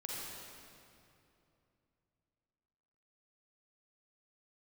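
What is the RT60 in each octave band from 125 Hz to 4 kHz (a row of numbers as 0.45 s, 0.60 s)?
3.7 s, 3.3 s, 2.9 s, 2.6 s, 2.3 s, 2.0 s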